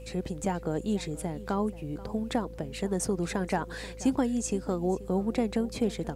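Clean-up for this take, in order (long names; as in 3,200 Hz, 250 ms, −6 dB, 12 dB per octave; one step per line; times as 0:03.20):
hum removal 54.7 Hz, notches 6
notch filter 510 Hz, Q 30
echo removal 482 ms −18 dB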